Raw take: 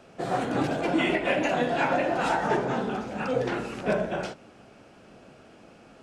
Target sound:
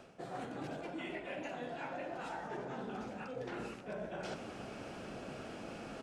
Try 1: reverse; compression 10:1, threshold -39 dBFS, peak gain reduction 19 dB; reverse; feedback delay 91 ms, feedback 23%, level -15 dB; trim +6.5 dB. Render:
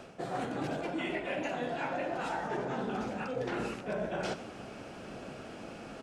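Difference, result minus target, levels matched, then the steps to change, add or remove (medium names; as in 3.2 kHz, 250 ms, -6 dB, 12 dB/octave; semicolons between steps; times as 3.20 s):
compression: peak gain reduction -7.5 dB
change: compression 10:1, threshold -47.5 dBFS, peak gain reduction 26.5 dB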